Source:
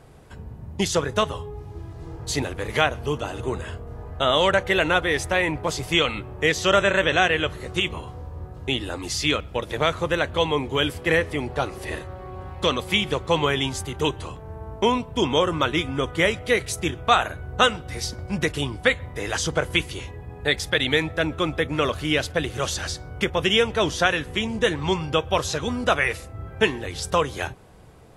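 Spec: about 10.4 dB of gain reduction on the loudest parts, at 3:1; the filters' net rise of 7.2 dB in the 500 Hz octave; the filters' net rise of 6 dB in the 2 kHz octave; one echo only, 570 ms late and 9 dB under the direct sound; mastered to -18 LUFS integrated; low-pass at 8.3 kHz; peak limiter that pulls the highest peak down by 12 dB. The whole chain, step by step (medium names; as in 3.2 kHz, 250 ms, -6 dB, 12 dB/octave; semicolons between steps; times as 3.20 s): low-pass 8.3 kHz; peaking EQ 500 Hz +8 dB; peaking EQ 2 kHz +7 dB; compression 3:1, threshold -22 dBFS; peak limiter -18 dBFS; delay 570 ms -9 dB; trim +11.5 dB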